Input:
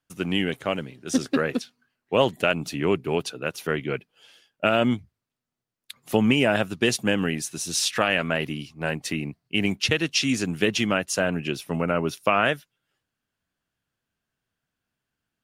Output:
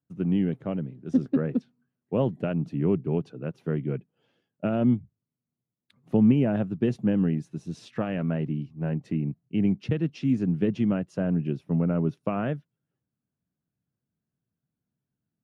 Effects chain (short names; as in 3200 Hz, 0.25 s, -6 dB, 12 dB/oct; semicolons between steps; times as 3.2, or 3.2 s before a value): band-pass 150 Hz, Q 1.4; low shelf 160 Hz -4.5 dB; gain +7.5 dB